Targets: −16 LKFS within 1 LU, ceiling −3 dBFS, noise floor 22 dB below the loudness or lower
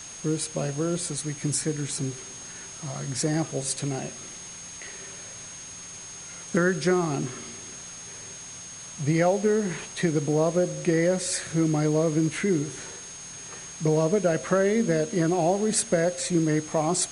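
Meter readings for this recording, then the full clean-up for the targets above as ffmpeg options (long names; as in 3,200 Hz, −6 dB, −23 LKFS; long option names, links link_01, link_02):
interfering tone 6,500 Hz; level of the tone −40 dBFS; background noise floor −41 dBFS; target noise floor −48 dBFS; integrated loudness −25.5 LKFS; sample peak −8.5 dBFS; target loudness −16.0 LKFS
→ -af "bandreject=frequency=6500:width=30"
-af "afftdn=noise_reduction=7:noise_floor=-41"
-af "volume=9.5dB,alimiter=limit=-3dB:level=0:latency=1"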